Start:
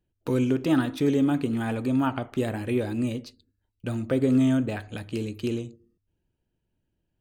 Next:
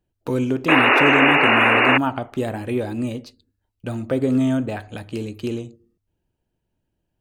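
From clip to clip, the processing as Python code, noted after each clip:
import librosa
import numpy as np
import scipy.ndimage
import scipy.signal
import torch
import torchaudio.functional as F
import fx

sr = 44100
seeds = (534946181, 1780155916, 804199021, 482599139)

y = fx.peak_eq(x, sr, hz=770.0, db=5.0, octaves=1.1)
y = fx.spec_paint(y, sr, seeds[0], shape='noise', start_s=0.68, length_s=1.3, low_hz=240.0, high_hz=2900.0, level_db=-17.0)
y = F.gain(torch.from_numpy(y), 1.5).numpy()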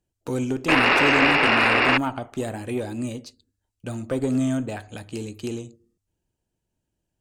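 y = fx.peak_eq(x, sr, hz=7400.0, db=10.0, octaves=1.1)
y = fx.tube_stage(y, sr, drive_db=5.0, bias=0.7)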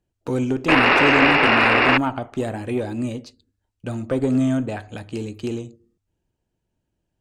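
y = fx.lowpass(x, sr, hz=3500.0, slope=6)
y = F.gain(torch.from_numpy(y), 3.5).numpy()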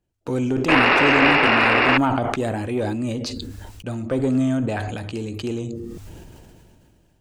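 y = fx.sustainer(x, sr, db_per_s=22.0)
y = F.gain(torch.from_numpy(y), -1.0).numpy()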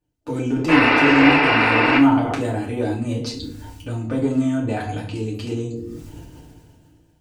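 y = fx.rev_fdn(x, sr, rt60_s=0.37, lf_ratio=1.45, hf_ratio=0.95, size_ms=20.0, drr_db=-4.5)
y = F.gain(torch.from_numpy(y), -6.0).numpy()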